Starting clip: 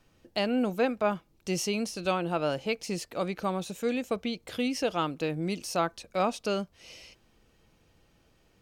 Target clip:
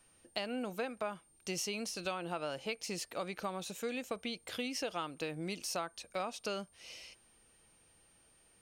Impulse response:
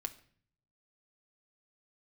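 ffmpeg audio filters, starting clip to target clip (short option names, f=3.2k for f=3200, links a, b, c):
-af "lowshelf=f=500:g=-8.5,acompressor=threshold=-33dB:ratio=6,aeval=exprs='val(0)+0.000562*sin(2*PI*9000*n/s)':c=same,volume=-1dB"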